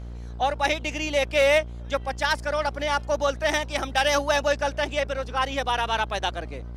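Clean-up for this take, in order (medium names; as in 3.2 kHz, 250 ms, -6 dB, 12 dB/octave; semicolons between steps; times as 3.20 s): clip repair -11.5 dBFS; de-hum 59 Hz, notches 27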